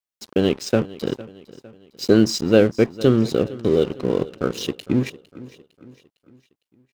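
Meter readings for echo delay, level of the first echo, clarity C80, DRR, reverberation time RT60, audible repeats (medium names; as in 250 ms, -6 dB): 456 ms, -19.0 dB, no reverb, no reverb, no reverb, 3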